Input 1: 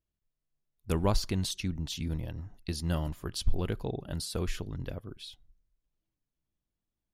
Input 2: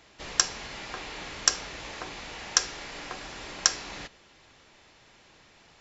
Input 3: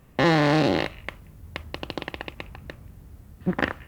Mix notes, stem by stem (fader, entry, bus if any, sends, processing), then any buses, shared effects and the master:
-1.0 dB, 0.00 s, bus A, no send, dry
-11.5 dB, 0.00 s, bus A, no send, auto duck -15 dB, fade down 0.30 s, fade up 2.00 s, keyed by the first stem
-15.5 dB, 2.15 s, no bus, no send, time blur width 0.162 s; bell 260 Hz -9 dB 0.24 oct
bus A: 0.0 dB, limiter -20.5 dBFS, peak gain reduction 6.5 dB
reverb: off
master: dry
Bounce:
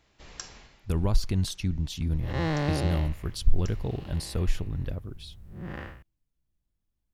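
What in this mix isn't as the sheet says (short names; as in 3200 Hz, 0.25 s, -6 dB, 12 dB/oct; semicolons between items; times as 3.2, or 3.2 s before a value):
stem 3 -15.5 dB -> -9.0 dB; master: extra low shelf 140 Hz +11.5 dB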